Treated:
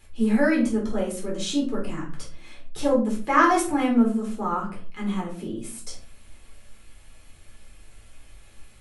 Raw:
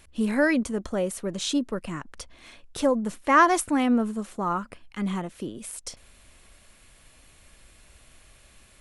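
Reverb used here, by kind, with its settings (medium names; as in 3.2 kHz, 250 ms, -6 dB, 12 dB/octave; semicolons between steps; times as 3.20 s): simulated room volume 290 m³, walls furnished, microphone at 4 m; trim -7 dB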